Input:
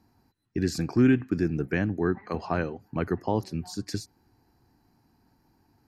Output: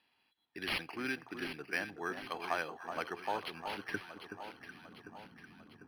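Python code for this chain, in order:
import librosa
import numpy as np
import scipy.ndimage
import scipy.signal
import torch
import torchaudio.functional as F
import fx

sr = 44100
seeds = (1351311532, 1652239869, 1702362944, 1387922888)

p1 = fx.notch(x, sr, hz=2900.0, q=19.0)
p2 = fx.dynamic_eq(p1, sr, hz=810.0, q=0.98, threshold_db=-41.0, ratio=4.0, max_db=7)
p3 = fx.hum_notches(p2, sr, base_hz=60, count=2)
p4 = fx.rider(p3, sr, range_db=3, speed_s=0.5)
p5 = p3 + (p4 * 10.0 ** (-1.5 / 20.0))
p6 = fx.filter_sweep_bandpass(p5, sr, from_hz=4000.0, to_hz=200.0, start_s=3.58, end_s=4.67, q=2.1)
p7 = p6 + fx.echo_alternate(p6, sr, ms=374, hz=1400.0, feedback_pct=73, wet_db=-7.0, dry=0)
p8 = np.interp(np.arange(len(p7)), np.arange(len(p7))[::6], p7[::6])
y = p8 * 10.0 ** (3.5 / 20.0)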